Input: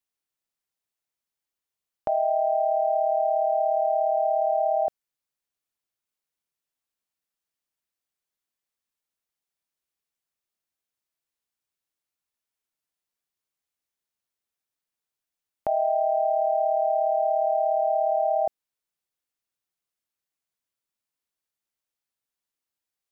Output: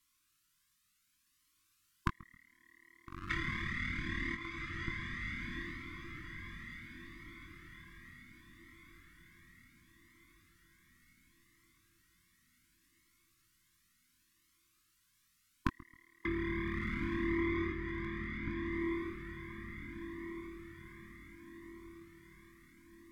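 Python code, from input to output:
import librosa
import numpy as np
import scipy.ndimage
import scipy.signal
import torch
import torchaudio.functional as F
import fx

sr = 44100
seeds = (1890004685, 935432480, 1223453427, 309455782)

y = fx.halfwave_hold(x, sr, at=(3.29, 4.34), fade=0.02)
y = fx.leveller(y, sr, passes=3, at=(16.25, 17.72))
y = fx.doubler(y, sr, ms=21.0, db=-8)
y = fx.echo_feedback(y, sr, ms=135, feedback_pct=28, wet_db=-21)
y = fx.env_lowpass_down(y, sr, base_hz=500.0, full_db=-15.5)
y = fx.brickwall_bandstop(y, sr, low_hz=350.0, high_hz=1000.0)
y = fx.echo_diffused(y, sr, ms=1369, feedback_pct=46, wet_db=-3.0)
y = fx.comb_cascade(y, sr, direction='rising', hz=0.69)
y = y * librosa.db_to_amplitude(17.0)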